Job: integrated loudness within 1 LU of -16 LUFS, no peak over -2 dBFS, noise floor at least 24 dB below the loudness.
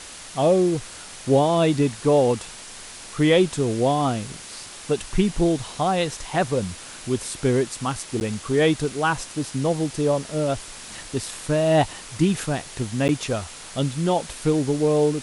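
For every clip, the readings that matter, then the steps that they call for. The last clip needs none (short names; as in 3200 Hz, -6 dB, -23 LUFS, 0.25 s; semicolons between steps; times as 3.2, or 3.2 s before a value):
dropouts 2; longest dropout 9.8 ms; noise floor -40 dBFS; noise floor target -47 dBFS; loudness -23.0 LUFS; peak -7.0 dBFS; loudness target -16.0 LUFS
-> interpolate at 8.2/13.08, 9.8 ms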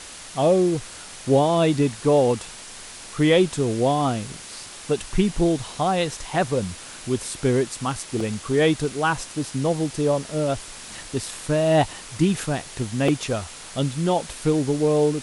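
dropouts 0; noise floor -40 dBFS; noise floor target -47 dBFS
-> noise print and reduce 7 dB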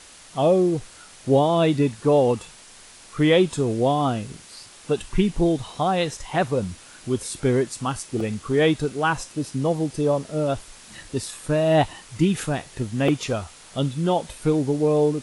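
noise floor -47 dBFS; loudness -23.0 LUFS; peak -7.0 dBFS; loudness target -16.0 LUFS
-> gain +7 dB; limiter -2 dBFS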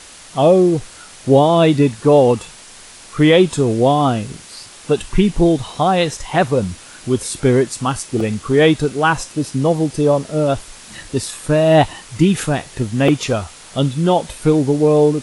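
loudness -16.0 LUFS; peak -2.0 dBFS; noise floor -40 dBFS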